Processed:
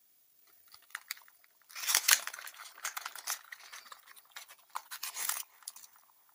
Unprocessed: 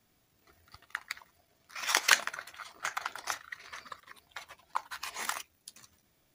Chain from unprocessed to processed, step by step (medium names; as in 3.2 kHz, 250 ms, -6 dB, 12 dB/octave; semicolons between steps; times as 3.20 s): high-pass 56 Hz; RIAA curve recording; on a send: band-passed feedback delay 333 ms, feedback 68%, band-pass 820 Hz, level -17 dB; on the sum: trim -7.5 dB